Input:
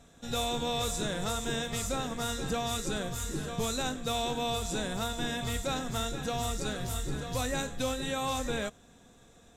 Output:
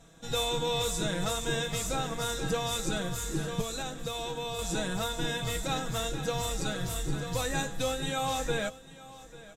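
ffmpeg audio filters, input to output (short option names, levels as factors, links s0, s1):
-filter_complex "[0:a]aecho=1:1:6.2:0.66,asettb=1/sr,asplit=3[s0][s1][s2];[s0]atrim=end=3.614[s3];[s1]atrim=start=3.61:end=4.59,asetpts=PTS-STARTPTS,afade=t=in:d=0.004:c=qsin,afade=t=out:st=0.976:d=0.004:c=qsin,acompressor=threshold=0.0251:ratio=6[s4];[s2]atrim=start=4.586[s5];[s3][s4]acrossfade=d=0.004:c1=hsin:c2=qsin[s6];[s6][s5]acrossfade=d=0.004:c1=qsin:c2=hsin,asplit=2[s7][s8];[s8]aecho=0:1:844:0.119[s9];[s7][s9]amix=inputs=2:normalize=0"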